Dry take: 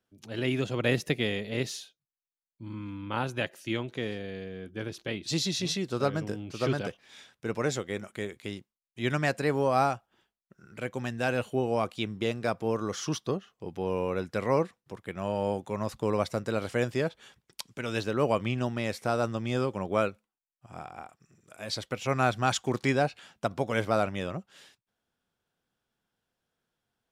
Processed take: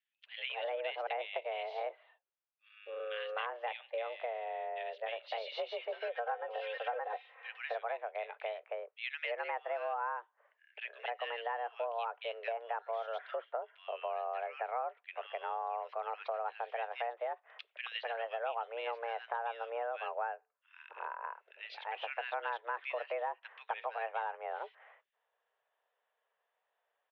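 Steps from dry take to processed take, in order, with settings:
0:05.81–0:07.48: comb filter 3.7 ms, depth 71%
multiband delay without the direct sound highs, lows 260 ms, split 1,800 Hz
single-sideband voice off tune +230 Hz 270–2,800 Hz
downward compressor 5 to 1, threshold −39 dBFS, peak gain reduction 16 dB
level +3.5 dB

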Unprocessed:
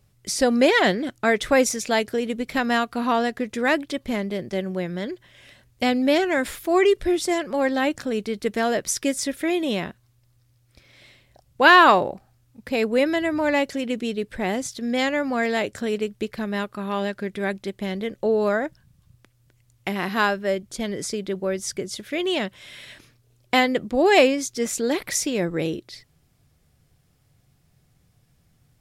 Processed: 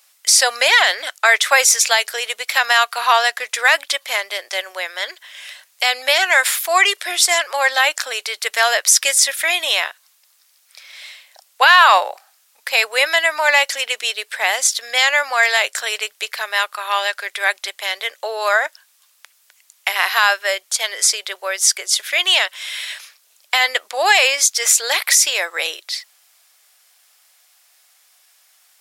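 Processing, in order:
Bessel high-pass filter 1,100 Hz, order 6
high-shelf EQ 3,400 Hz +5 dB
boost into a limiter +14.5 dB
level −1 dB

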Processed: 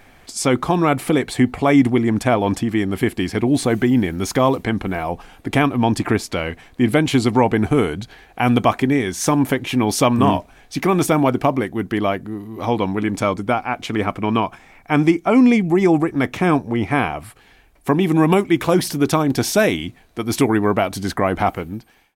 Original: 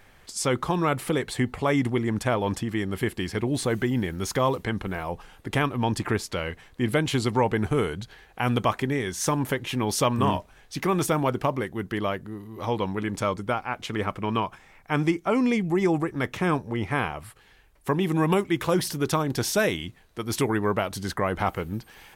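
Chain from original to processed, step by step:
fade-out on the ending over 0.78 s
hollow resonant body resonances 270/700/2,300 Hz, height 7 dB, ringing for 25 ms
level +5 dB

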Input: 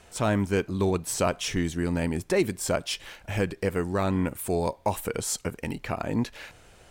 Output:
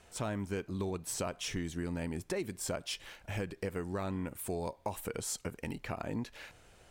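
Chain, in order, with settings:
downward compressor 5 to 1, threshold −26 dBFS, peak gain reduction 7.5 dB
level −6.5 dB

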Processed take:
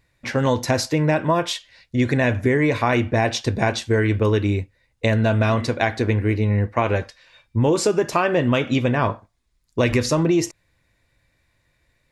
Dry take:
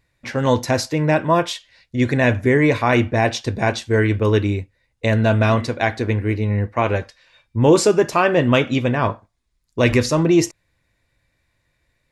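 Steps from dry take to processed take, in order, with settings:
downward compressor, threshold −17 dBFS, peak gain reduction 9 dB
level +2 dB

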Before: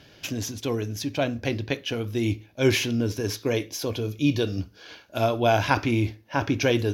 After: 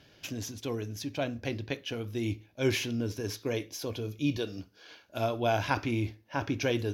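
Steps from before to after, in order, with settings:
0:04.37–0:05.03: high-pass filter 230 Hz 6 dB per octave
level −7 dB

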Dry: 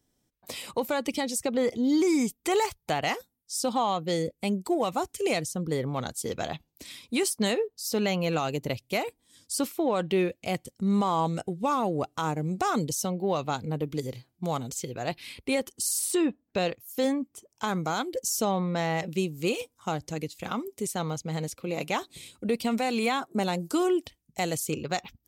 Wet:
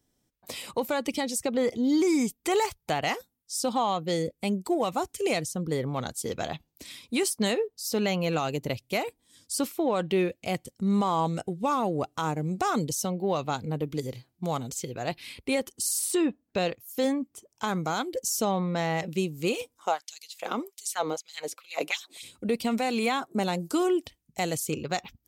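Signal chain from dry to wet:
0:19.77–0:22.22: auto-filter high-pass sine 1 Hz → 4.1 Hz 310–4,900 Hz

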